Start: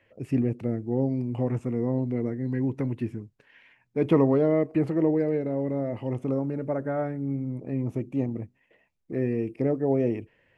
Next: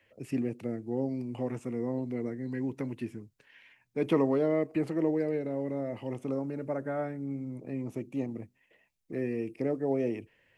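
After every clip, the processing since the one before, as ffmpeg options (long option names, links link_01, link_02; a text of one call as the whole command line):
ffmpeg -i in.wav -filter_complex "[0:a]highshelf=frequency=2700:gain=10,acrossover=split=160|690[link_01][link_02][link_03];[link_01]acompressor=threshold=-43dB:ratio=6[link_04];[link_04][link_02][link_03]amix=inputs=3:normalize=0,volume=-5dB" out.wav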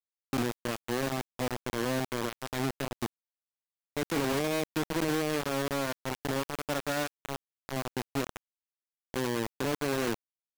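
ffmpeg -i in.wav -filter_complex "[0:a]acrossover=split=110[link_01][link_02];[link_02]alimiter=level_in=0.5dB:limit=-24dB:level=0:latency=1:release=14,volume=-0.5dB[link_03];[link_01][link_03]amix=inputs=2:normalize=0,acrusher=bits=4:mix=0:aa=0.000001" out.wav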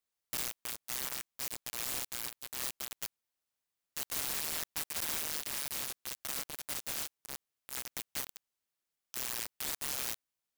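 ffmpeg -i in.wav -af "aeval=exprs='(mod(75*val(0)+1,2)-1)/75':channel_layout=same,volume=7dB" out.wav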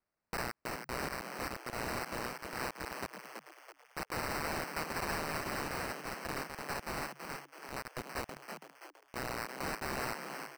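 ffmpeg -i in.wav -filter_complex "[0:a]acrusher=samples=13:mix=1:aa=0.000001,asplit=2[link_01][link_02];[link_02]asplit=5[link_03][link_04][link_05][link_06][link_07];[link_03]adelay=329,afreqshift=140,volume=-6.5dB[link_08];[link_04]adelay=658,afreqshift=280,volume=-13.6dB[link_09];[link_05]adelay=987,afreqshift=420,volume=-20.8dB[link_10];[link_06]adelay=1316,afreqshift=560,volume=-27.9dB[link_11];[link_07]adelay=1645,afreqshift=700,volume=-35dB[link_12];[link_08][link_09][link_10][link_11][link_12]amix=inputs=5:normalize=0[link_13];[link_01][link_13]amix=inputs=2:normalize=0,volume=-1dB" out.wav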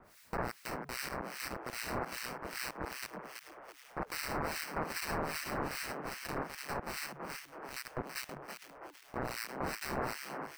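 ffmpeg -i in.wav -filter_complex "[0:a]aeval=exprs='val(0)+0.5*0.00251*sgn(val(0))':channel_layout=same,acrossover=split=1600[link_01][link_02];[link_01]aeval=exprs='val(0)*(1-1/2+1/2*cos(2*PI*2.5*n/s))':channel_layout=same[link_03];[link_02]aeval=exprs='val(0)*(1-1/2-1/2*cos(2*PI*2.5*n/s))':channel_layout=same[link_04];[link_03][link_04]amix=inputs=2:normalize=0,volume=4dB" out.wav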